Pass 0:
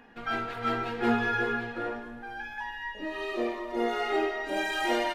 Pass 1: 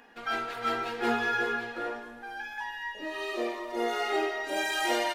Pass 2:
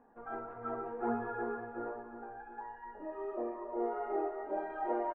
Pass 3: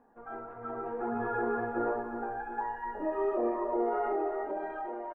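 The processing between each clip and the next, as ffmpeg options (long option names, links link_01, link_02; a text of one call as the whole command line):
ffmpeg -i in.wav -af "bass=frequency=250:gain=-11,treble=frequency=4000:gain=7" out.wav
ffmpeg -i in.wav -af "lowpass=frequency=1100:width=0.5412,lowpass=frequency=1100:width=1.3066,flanger=delay=0.4:depth=2.2:regen=64:speed=1.7:shape=sinusoidal,aecho=1:1:363|726|1089|1452|1815|2178:0.266|0.138|0.0719|0.0374|0.0195|0.0101" out.wav
ffmpeg -i in.wav -af "alimiter=level_in=8.5dB:limit=-24dB:level=0:latency=1:release=35,volume=-8.5dB,dynaudnorm=framelen=240:gausssize=9:maxgain=10.5dB" out.wav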